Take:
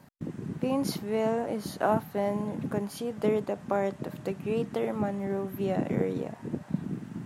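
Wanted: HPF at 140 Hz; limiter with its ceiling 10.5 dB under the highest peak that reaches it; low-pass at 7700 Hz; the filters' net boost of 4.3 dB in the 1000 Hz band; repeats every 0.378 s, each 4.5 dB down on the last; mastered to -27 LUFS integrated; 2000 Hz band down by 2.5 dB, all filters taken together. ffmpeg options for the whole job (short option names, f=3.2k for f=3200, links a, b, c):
-af "highpass=140,lowpass=7.7k,equalizer=f=1k:t=o:g=7,equalizer=f=2k:t=o:g=-6.5,alimiter=limit=-20.5dB:level=0:latency=1,aecho=1:1:378|756|1134|1512|1890|2268|2646|3024|3402:0.596|0.357|0.214|0.129|0.0772|0.0463|0.0278|0.0167|0.01,volume=3.5dB"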